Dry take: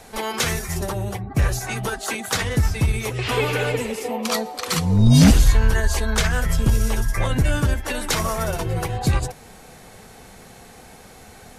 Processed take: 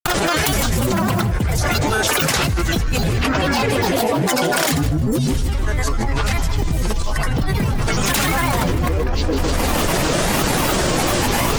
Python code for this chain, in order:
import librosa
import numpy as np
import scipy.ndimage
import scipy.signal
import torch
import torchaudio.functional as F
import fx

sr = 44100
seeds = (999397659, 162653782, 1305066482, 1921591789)

y = fx.granulator(x, sr, seeds[0], grain_ms=100.0, per_s=20.0, spray_ms=100.0, spread_st=12)
y = fx.echo_feedback(y, sr, ms=155, feedback_pct=58, wet_db=-14.0)
y = fx.env_flatten(y, sr, amount_pct=100)
y = y * 10.0 ** (-8.0 / 20.0)